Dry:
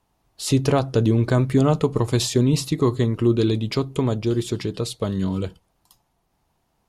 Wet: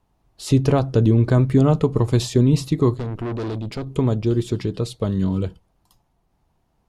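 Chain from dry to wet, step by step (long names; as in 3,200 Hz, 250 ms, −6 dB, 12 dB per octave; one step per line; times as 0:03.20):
spectral tilt −1.5 dB per octave
0:02.94–0:03.87: tube saturation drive 23 dB, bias 0.7
level −1 dB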